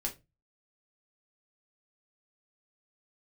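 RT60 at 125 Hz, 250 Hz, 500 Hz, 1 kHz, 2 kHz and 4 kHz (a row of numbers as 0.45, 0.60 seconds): 0.45, 0.30, 0.25, 0.20, 0.20, 0.20 seconds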